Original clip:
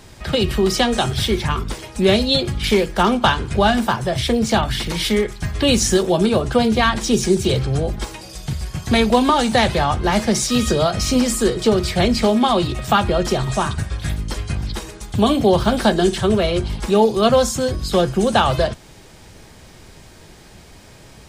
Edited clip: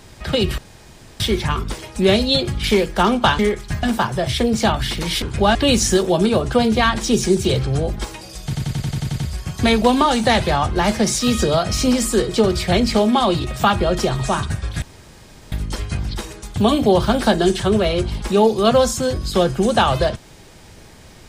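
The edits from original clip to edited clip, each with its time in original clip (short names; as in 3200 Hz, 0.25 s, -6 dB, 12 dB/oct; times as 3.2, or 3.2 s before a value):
0.58–1.2 room tone
3.39–3.72 swap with 5.11–5.55
8.46 stutter 0.09 s, 9 plays
14.1 insert room tone 0.70 s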